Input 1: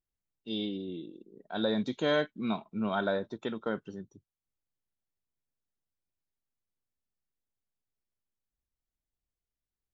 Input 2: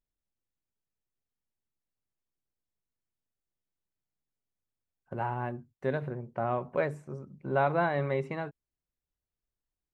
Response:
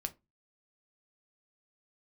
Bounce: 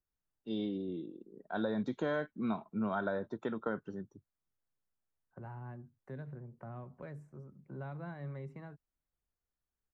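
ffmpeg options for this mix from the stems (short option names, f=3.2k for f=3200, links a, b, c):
-filter_complex "[0:a]volume=-0.5dB[a];[1:a]acrossover=split=240|3000[b][c][d];[c]acompressor=threshold=-49dB:ratio=2.5[e];[b][e][d]amix=inputs=3:normalize=0,adelay=250,volume=-7.5dB[f];[a][f]amix=inputs=2:normalize=0,highshelf=f=2.1k:t=q:w=1.5:g=-8,acrossover=split=130[g][h];[h]acompressor=threshold=-31dB:ratio=6[i];[g][i]amix=inputs=2:normalize=0"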